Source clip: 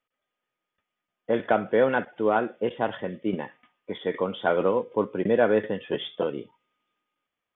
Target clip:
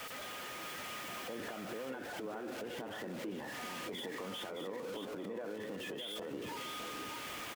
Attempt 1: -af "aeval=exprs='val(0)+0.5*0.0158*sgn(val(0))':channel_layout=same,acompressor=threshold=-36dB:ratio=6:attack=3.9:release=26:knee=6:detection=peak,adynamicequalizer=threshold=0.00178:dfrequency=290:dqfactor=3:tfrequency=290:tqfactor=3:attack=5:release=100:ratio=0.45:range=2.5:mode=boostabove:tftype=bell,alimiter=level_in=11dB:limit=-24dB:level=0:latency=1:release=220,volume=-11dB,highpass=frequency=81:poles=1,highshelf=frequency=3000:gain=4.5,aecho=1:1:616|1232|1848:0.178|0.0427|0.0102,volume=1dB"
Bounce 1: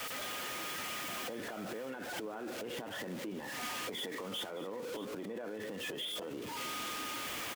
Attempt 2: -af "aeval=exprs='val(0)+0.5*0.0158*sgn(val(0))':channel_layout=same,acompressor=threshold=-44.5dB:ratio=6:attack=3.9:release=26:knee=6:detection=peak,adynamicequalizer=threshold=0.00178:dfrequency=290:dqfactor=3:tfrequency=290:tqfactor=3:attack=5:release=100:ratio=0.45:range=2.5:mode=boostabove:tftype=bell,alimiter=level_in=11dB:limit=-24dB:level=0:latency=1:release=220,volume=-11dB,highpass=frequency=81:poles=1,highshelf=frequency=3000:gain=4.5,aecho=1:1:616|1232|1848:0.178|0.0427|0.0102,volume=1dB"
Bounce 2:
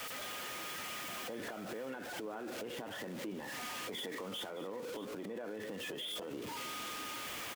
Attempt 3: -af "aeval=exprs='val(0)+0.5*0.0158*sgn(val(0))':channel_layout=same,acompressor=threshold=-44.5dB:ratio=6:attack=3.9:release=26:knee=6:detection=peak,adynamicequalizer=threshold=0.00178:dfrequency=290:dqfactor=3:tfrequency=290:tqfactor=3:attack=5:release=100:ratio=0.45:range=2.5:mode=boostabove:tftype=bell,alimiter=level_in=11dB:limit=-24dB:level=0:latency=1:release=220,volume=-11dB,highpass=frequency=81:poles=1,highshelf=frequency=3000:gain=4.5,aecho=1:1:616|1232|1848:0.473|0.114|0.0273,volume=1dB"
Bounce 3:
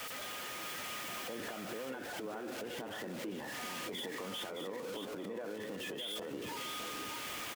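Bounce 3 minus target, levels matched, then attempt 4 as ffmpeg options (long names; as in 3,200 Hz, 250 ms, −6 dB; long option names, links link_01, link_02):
8,000 Hz band +2.5 dB
-af "aeval=exprs='val(0)+0.5*0.0158*sgn(val(0))':channel_layout=same,acompressor=threshold=-44.5dB:ratio=6:attack=3.9:release=26:knee=6:detection=peak,adynamicequalizer=threshold=0.00178:dfrequency=290:dqfactor=3:tfrequency=290:tqfactor=3:attack=5:release=100:ratio=0.45:range=2.5:mode=boostabove:tftype=bell,alimiter=level_in=11dB:limit=-24dB:level=0:latency=1:release=220,volume=-11dB,highpass=frequency=81:poles=1,aecho=1:1:616|1232|1848:0.473|0.114|0.0273,volume=1dB"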